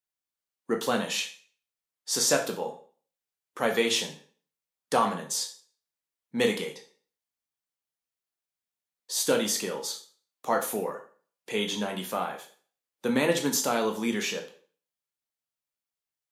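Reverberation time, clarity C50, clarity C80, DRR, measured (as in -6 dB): 0.45 s, 10.5 dB, 15.0 dB, 3.0 dB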